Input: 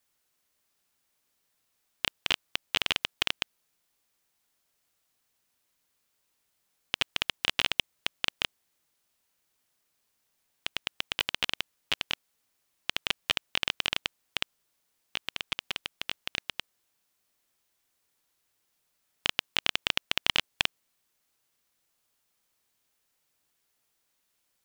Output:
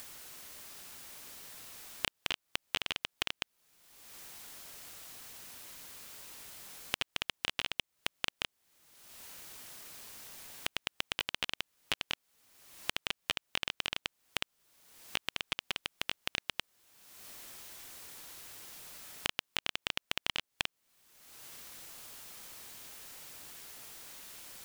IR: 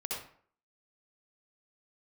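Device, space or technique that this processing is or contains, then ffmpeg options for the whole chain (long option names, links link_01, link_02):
upward and downward compression: -af "acompressor=mode=upward:threshold=-41dB:ratio=2.5,acompressor=threshold=-39dB:ratio=6,volume=8dB"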